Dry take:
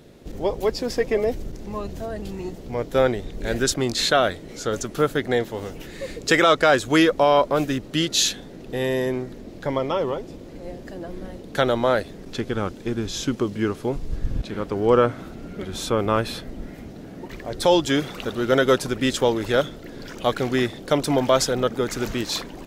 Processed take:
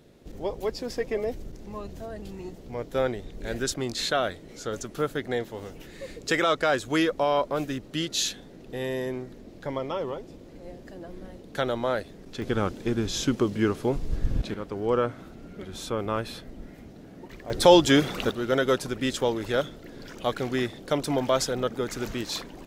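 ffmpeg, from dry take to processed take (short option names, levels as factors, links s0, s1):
-af "asetnsamples=n=441:p=0,asendcmd='12.42 volume volume -0.5dB;14.54 volume volume -7.5dB;17.5 volume volume 2dB;18.31 volume volume -5.5dB',volume=0.447"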